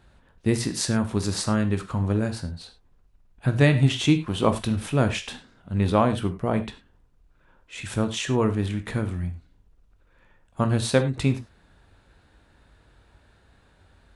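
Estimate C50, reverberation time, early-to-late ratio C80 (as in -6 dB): 13.0 dB, not exponential, 17.0 dB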